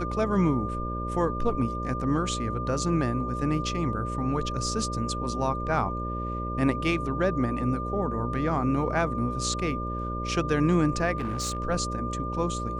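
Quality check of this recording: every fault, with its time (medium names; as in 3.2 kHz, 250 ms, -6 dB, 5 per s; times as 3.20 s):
buzz 60 Hz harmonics 10 -33 dBFS
whine 1.2 kHz -33 dBFS
11.17–11.58 s: clipped -25.5 dBFS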